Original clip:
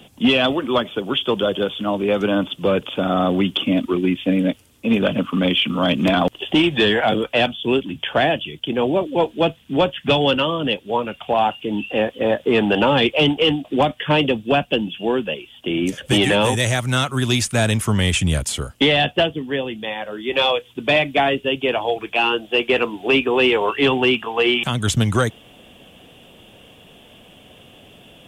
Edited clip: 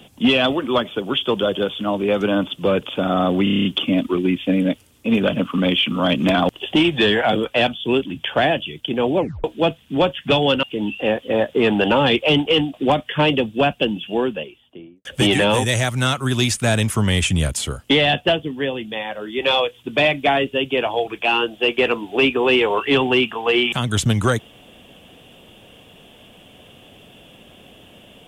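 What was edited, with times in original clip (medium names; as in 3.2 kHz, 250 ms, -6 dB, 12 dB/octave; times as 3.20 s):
3.44 s: stutter 0.03 s, 8 plays
8.97 s: tape stop 0.26 s
10.42–11.54 s: delete
15.03–15.96 s: studio fade out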